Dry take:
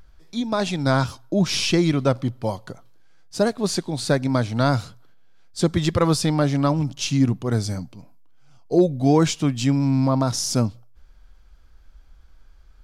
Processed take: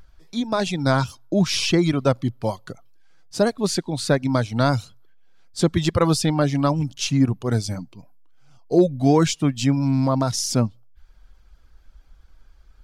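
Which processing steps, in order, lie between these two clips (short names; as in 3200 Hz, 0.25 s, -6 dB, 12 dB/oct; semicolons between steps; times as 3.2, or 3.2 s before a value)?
reverb removal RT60 0.5 s; gain +1 dB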